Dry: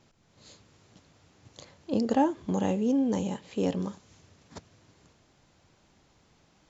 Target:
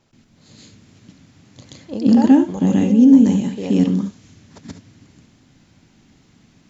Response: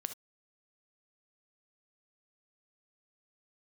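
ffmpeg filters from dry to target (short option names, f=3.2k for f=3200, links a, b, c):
-filter_complex "[0:a]asplit=2[a][b];[b]equalizer=f=125:t=o:w=1:g=4,equalizer=f=250:t=o:w=1:g=11,equalizer=f=500:t=o:w=1:g=-7,equalizer=f=1k:t=o:w=1:g=-7,equalizer=f=2k:t=o:w=1:g=3[c];[1:a]atrim=start_sample=2205,adelay=129[d];[c][d]afir=irnorm=-1:irlink=0,volume=7.5dB[e];[a][e]amix=inputs=2:normalize=0"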